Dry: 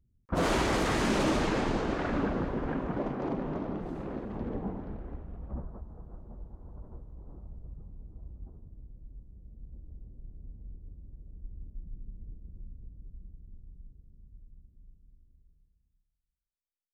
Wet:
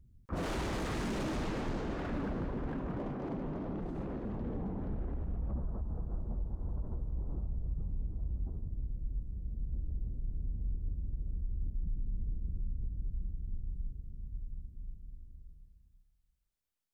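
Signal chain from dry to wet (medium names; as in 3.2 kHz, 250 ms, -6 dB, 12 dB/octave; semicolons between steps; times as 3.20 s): overload inside the chain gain 27.5 dB; peak limiter -39 dBFS, peak gain reduction 11.5 dB; bass shelf 240 Hz +7.5 dB; trim +3.5 dB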